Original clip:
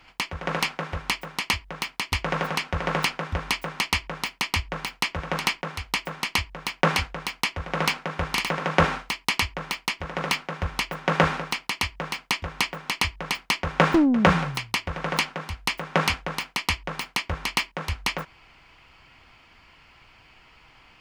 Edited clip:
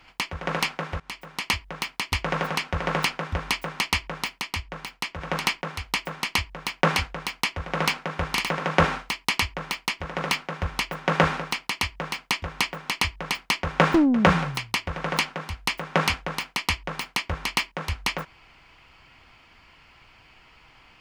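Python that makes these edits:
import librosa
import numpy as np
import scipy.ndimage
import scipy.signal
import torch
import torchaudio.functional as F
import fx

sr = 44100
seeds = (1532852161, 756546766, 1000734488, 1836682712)

y = fx.edit(x, sr, fx.fade_in_from(start_s=1.0, length_s=0.53, floor_db=-19.5),
    fx.clip_gain(start_s=4.41, length_s=0.8, db=-5.0), tone=tone)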